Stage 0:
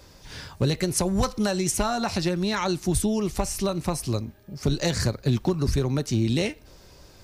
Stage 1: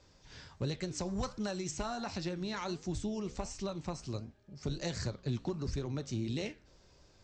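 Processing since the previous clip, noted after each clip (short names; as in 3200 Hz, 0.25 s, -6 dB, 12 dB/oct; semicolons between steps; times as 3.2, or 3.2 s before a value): steep low-pass 7900 Hz 96 dB/oct; flange 1.4 Hz, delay 8.3 ms, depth 9.5 ms, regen -82%; gain -8 dB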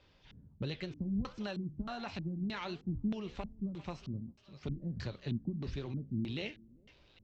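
thinning echo 0.398 s, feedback 48%, high-pass 950 Hz, level -12.5 dB; LFO low-pass square 1.6 Hz 220–3100 Hz; gain -3.5 dB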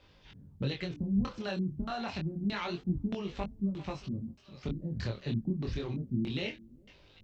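chorus 0.28 Hz, delay 20 ms, depth 6.8 ms; gain +7.5 dB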